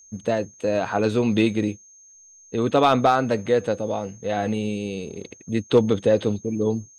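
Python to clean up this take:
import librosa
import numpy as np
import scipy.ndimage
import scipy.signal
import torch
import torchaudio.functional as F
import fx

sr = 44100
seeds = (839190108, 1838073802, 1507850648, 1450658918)

y = fx.fix_declip(x, sr, threshold_db=-8.0)
y = fx.notch(y, sr, hz=6400.0, q=30.0)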